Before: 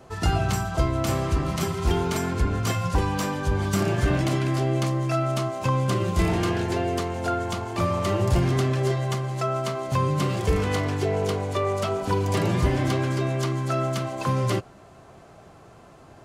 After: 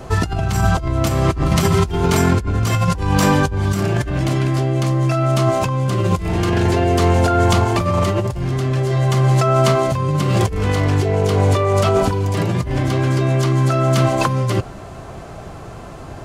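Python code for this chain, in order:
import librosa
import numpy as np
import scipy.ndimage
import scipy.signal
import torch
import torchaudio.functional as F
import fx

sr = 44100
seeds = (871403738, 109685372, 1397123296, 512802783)

y = fx.low_shelf(x, sr, hz=77.0, db=11.5)
y = fx.over_compress(y, sr, threshold_db=-26.0, ratio=-1.0)
y = F.gain(torch.from_numpy(y), 9.0).numpy()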